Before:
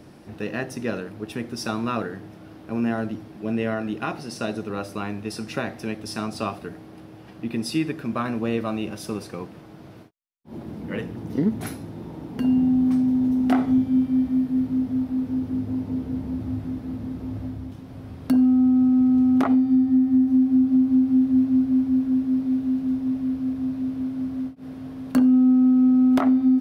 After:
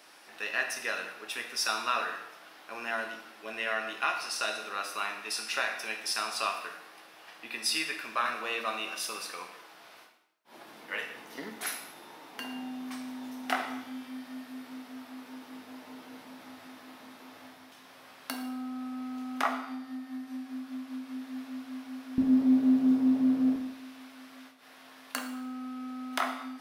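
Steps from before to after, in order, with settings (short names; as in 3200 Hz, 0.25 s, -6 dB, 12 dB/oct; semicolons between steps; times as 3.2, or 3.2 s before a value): HPF 1200 Hz 12 dB/oct, from 22.18 s 330 Hz, from 23.56 s 1400 Hz; reverb RT60 0.85 s, pre-delay 5 ms, DRR 3.5 dB; gain +3 dB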